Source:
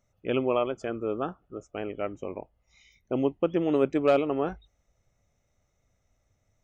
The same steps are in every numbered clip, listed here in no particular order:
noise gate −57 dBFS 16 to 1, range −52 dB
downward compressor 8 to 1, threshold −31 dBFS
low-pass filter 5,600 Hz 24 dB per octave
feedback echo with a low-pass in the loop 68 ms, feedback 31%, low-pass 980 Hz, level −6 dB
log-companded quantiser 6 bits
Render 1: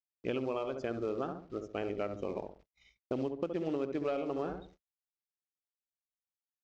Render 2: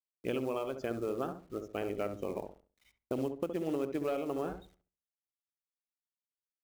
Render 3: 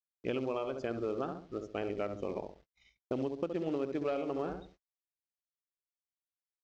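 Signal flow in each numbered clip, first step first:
log-companded quantiser, then feedback echo with a low-pass in the loop, then downward compressor, then noise gate, then low-pass filter
low-pass filter, then noise gate, then log-companded quantiser, then downward compressor, then feedback echo with a low-pass in the loop
feedback echo with a low-pass in the loop, then log-companded quantiser, then downward compressor, then noise gate, then low-pass filter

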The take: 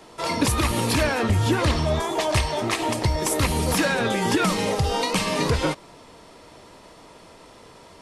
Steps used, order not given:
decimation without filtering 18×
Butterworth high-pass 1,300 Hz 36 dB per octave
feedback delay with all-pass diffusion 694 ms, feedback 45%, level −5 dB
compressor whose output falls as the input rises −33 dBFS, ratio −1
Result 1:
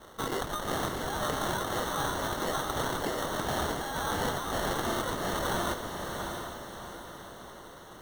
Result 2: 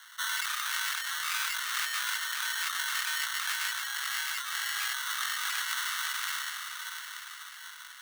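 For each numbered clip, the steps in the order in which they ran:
Butterworth high-pass, then decimation without filtering, then compressor whose output falls as the input rises, then feedback delay with all-pass diffusion
feedback delay with all-pass diffusion, then decimation without filtering, then Butterworth high-pass, then compressor whose output falls as the input rises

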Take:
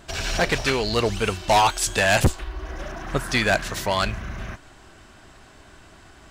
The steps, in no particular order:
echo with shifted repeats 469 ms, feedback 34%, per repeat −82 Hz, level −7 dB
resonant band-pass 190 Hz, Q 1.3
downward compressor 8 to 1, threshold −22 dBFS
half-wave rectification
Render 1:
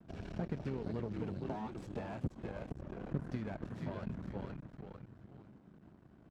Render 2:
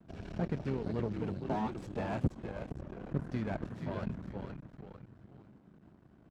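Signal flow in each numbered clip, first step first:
echo with shifted repeats, then downward compressor, then half-wave rectification, then resonant band-pass
echo with shifted repeats, then half-wave rectification, then resonant band-pass, then downward compressor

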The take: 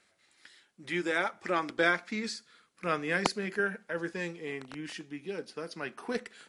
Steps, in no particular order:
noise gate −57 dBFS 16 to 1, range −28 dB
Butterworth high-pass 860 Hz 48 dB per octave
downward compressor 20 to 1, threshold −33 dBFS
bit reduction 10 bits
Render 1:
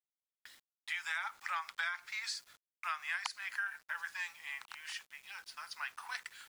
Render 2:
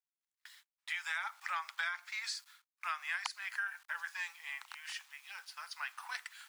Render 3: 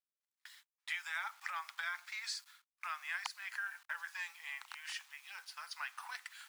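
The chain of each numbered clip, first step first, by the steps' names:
Butterworth high-pass, then noise gate, then bit reduction, then downward compressor
bit reduction, then Butterworth high-pass, then noise gate, then downward compressor
downward compressor, then bit reduction, then Butterworth high-pass, then noise gate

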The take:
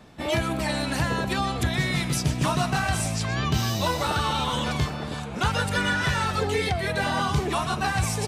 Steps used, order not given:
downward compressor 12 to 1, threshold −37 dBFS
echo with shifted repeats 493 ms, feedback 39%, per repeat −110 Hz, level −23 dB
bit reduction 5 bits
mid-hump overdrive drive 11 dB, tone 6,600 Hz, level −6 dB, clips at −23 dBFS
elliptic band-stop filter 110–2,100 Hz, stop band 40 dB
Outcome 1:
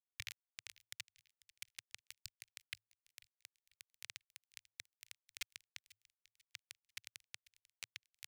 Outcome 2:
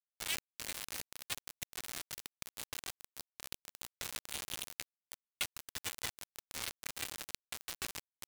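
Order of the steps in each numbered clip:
downward compressor, then bit reduction, then echo with shifted repeats, then elliptic band-stop filter, then mid-hump overdrive
echo with shifted repeats, then elliptic band-stop filter, then downward compressor, then mid-hump overdrive, then bit reduction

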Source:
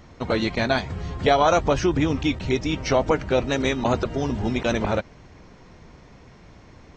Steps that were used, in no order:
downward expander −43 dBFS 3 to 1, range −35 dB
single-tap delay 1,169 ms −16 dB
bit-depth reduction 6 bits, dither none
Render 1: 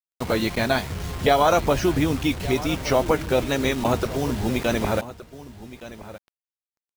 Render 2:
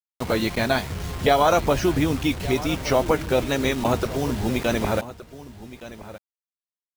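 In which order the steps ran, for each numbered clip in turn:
bit-depth reduction, then single-tap delay, then downward expander
downward expander, then bit-depth reduction, then single-tap delay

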